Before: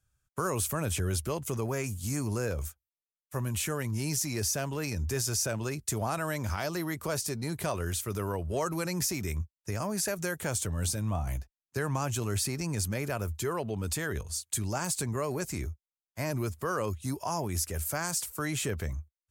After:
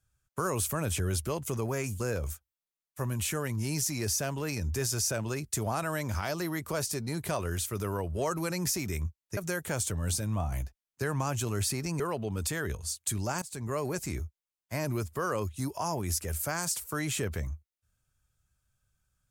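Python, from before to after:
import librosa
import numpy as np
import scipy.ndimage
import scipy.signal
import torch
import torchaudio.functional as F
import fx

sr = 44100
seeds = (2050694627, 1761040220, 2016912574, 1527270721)

y = fx.edit(x, sr, fx.cut(start_s=2.0, length_s=0.35),
    fx.cut(start_s=9.72, length_s=0.4),
    fx.cut(start_s=12.75, length_s=0.71),
    fx.fade_in_from(start_s=14.88, length_s=0.34, floor_db=-21.5), tone=tone)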